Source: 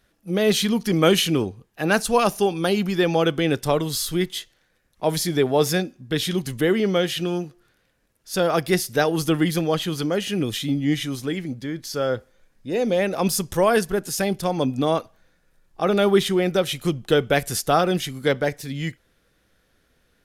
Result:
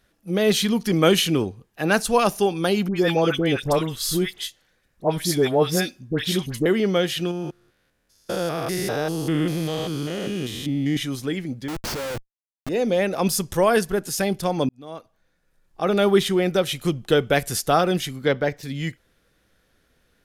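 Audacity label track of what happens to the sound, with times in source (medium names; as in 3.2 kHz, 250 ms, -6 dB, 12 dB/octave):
2.880000	6.660000	phase dispersion highs, late by 83 ms, half as late at 1.4 kHz
7.310000	10.970000	spectrogram pixelated in time every 200 ms
11.680000	12.690000	Schmitt trigger flips at -33 dBFS
14.690000	16.030000	fade in
18.160000	18.630000	peaking EQ 10 kHz -14.5 dB 0.95 oct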